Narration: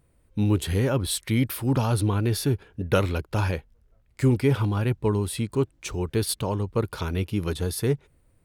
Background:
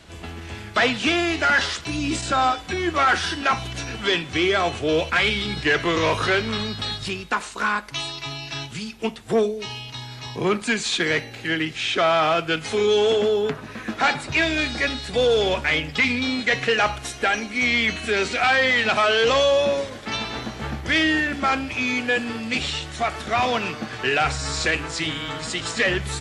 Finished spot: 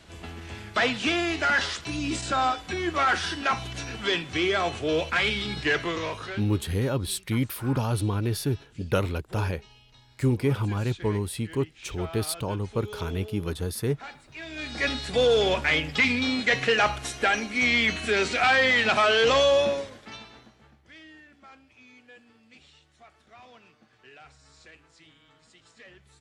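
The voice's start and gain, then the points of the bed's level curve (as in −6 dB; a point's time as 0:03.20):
6.00 s, −3.0 dB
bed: 0:05.74 −4.5 dB
0:06.63 −22 dB
0:14.35 −22 dB
0:14.88 −2 dB
0:19.60 −2 dB
0:20.76 −29.5 dB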